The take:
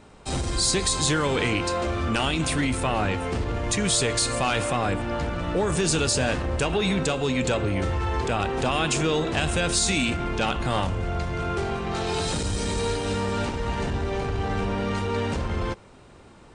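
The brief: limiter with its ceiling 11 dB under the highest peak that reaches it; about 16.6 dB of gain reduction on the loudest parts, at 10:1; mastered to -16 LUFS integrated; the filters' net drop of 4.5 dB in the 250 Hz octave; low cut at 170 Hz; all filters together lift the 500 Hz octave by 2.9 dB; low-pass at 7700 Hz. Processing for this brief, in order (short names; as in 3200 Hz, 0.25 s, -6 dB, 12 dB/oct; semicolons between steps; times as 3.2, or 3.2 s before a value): HPF 170 Hz; LPF 7700 Hz; bell 250 Hz -7 dB; bell 500 Hz +5.5 dB; compressor 10:1, threshold -36 dBFS; gain +27 dB; limiter -7.5 dBFS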